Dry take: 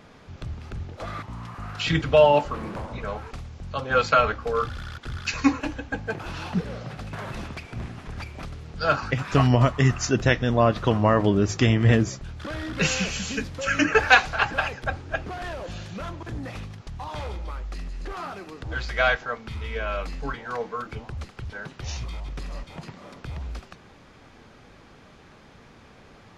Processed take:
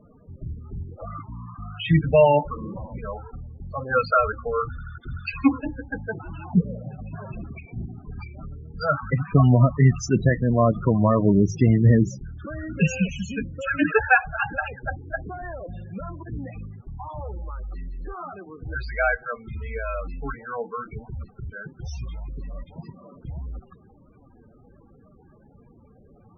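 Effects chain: loudest bins only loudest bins 16; dynamic EQ 170 Hz, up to +8 dB, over -39 dBFS, Q 1.9

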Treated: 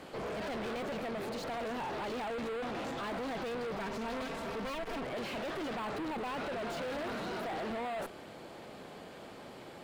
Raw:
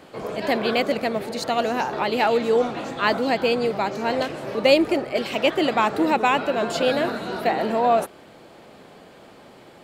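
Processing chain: 3.76–5.05 minimum comb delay 4.4 ms; tube stage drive 36 dB, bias 0.45; slew limiter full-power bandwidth 29 Hz

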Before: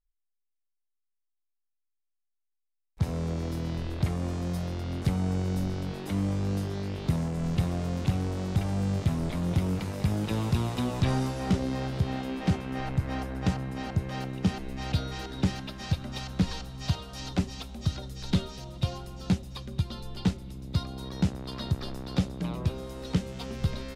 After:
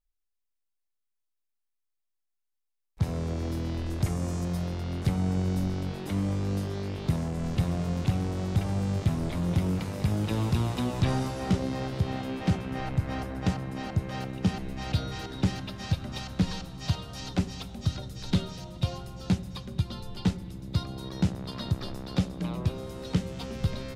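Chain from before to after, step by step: 3.86–4.45 resonant high shelf 5100 Hz +6 dB, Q 1.5; reverb RT60 2.7 s, pre-delay 4 ms, DRR 15.5 dB

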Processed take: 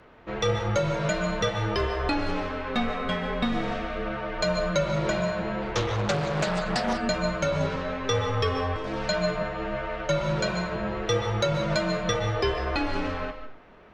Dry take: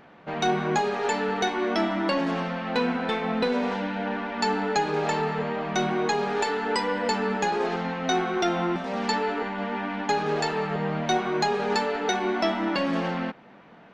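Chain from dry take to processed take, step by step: HPF 300 Hz 12 dB/oct; frequency shift -260 Hz; reverb RT60 0.35 s, pre-delay 0.105 s, DRR 9.5 dB; 5.62–7 Doppler distortion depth 0.4 ms

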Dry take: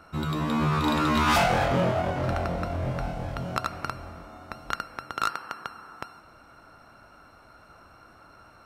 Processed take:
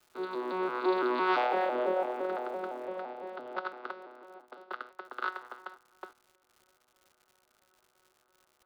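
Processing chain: arpeggiated vocoder bare fifth, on B2, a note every 0.169 s; gate -46 dBFS, range -15 dB; elliptic band-pass 350–4200 Hz, stop band 40 dB; crackle 280/s -51 dBFS, from 2.85 s 32/s, from 5.05 s 200/s

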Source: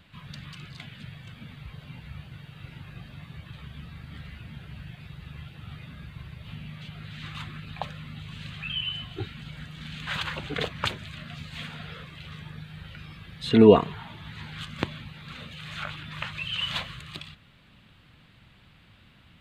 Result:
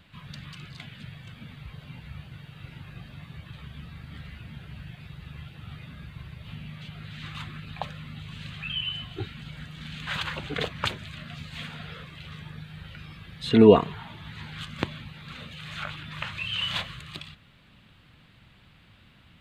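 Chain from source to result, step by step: 16.24–16.82 doubler 29 ms -7 dB

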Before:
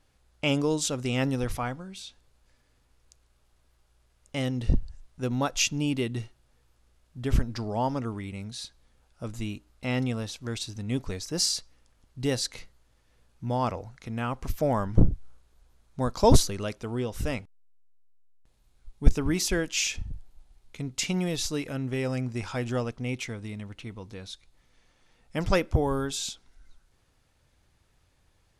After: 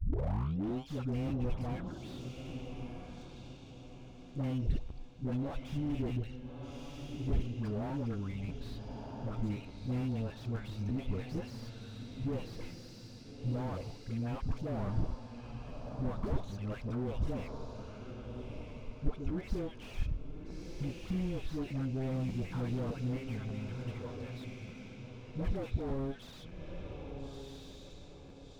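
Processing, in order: tape start at the beginning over 0.90 s; compressor 10:1, threshold -27 dBFS, peak gain reduction 18.5 dB; LPF 4000 Hz 12 dB/oct; envelope flanger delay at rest 7.1 ms, full sweep at -27.5 dBFS; tube stage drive 26 dB, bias 0.5; low shelf 70 Hz +5.5 dB; notch 1900 Hz, Q 8.4; dispersion highs, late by 95 ms, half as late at 580 Hz; on a send: diffused feedback echo 1.309 s, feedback 43%, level -9 dB; on the sum: crackling interface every 0.60 s, samples 512, repeat, from 0.68; slew limiter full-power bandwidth 6.5 Hz; gain +1 dB

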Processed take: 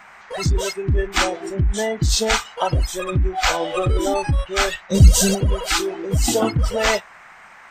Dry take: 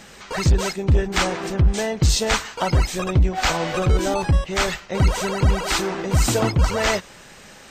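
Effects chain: band noise 680–2200 Hz -32 dBFS; 4.9–5.35 tone controls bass +13 dB, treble +14 dB; spectral noise reduction 15 dB; in parallel at -2 dB: negative-ratio compressor -18 dBFS, ratio -0.5; on the sum: gain -4.5 dB

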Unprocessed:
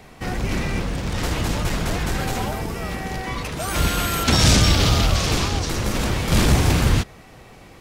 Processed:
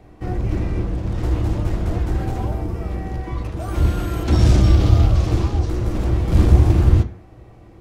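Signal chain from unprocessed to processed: tilt shelf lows +8 dB, about 1200 Hz; de-hum 88.65 Hz, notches 27; on a send: reverb RT60 0.30 s, pre-delay 3 ms, DRR 7 dB; on the sum: gain -8 dB

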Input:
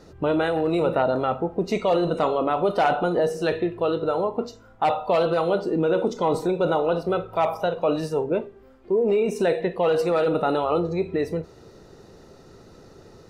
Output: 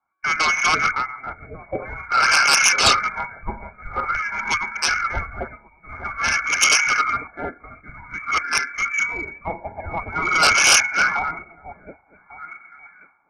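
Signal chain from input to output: regenerating reverse delay 0.572 s, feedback 45%, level -1 dB; steep high-pass 400 Hz 72 dB/oct; inverted band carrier 2700 Hz; LFO low-pass sine 0.49 Hz 620–1600 Hz; sine folder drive 16 dB, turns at -2 dBFS; Butterworth band-stop 1900 Hz, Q 3.8; three-band expander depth 100%; gain -11 dB

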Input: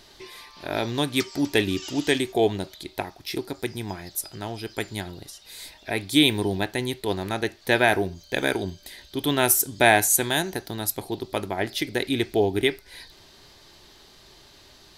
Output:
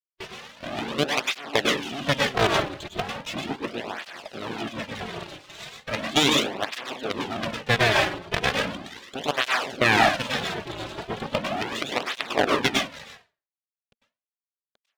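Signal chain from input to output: octaver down 1 oct, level -2 dB; companded quantiser 2-bit; low shelf 440 Hz -8.5 dB; reverb RT60 0.35 s, pre-delay 92 ms, DRR 1.5 dB; in parallel at -4.5 dB: hard clip -18 dBFS, distortion -2 dB; on the sum: speaker cabinet 180–2900 Hz, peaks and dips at 230 Hz +8 dB, 350 Hz -8 dB, 600 Hz +4 dB, 950 Hz -6 dB, 1400 Hz -6 dB, 2100 Hz -7 dB; harmonic-percussive split harmonic -14 dB; half-wave rectifier; maximiser +9 dB; tape flanging out of phase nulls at 0.37 Hz, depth 4.5 ms

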